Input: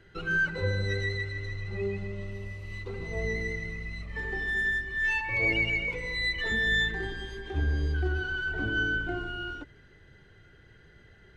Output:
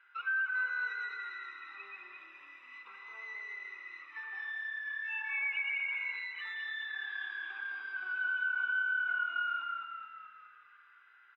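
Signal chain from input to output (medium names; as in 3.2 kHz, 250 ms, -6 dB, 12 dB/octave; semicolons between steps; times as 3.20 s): high-pass 1.1 kHz 24 dB/octave; frequency-shifting echo 210 ms, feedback 53%, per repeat -36 Hz, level -4.5 dB; compression 6:1, threshold -31 dBFS, peak gain reduction 9 dB; Savitzky-Golay filter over 25 samples; tilt EQ -2 dB/octave; comb 0.8 ms, depth 69%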